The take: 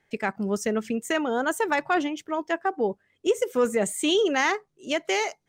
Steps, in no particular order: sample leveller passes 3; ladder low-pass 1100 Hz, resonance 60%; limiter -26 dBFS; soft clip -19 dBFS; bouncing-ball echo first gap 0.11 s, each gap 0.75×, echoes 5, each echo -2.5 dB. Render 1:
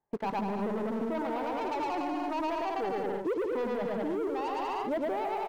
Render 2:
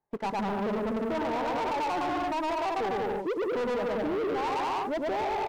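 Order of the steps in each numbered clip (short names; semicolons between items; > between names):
soft clip > ladder low-pass > sample leveller > bouncing-ball echo > limiter; ladder low-pass > soft clip > bouncing-ball echo > limiter > sample leveller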